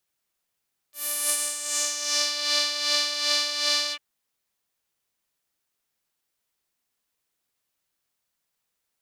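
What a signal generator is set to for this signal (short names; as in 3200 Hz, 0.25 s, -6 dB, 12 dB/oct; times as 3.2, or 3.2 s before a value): synth patch with tremolo D5, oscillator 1 saw, sub -9.5 dB, filter bandpass, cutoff 2300 Hz, Q 2.9, filter envelope 2.5 oct, filter decay 1.46 s, attack 0.366 s, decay 0.07 s, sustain -10 dB, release 0.06 s, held 2.99 s, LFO 2.6 Hz, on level 7.5 dB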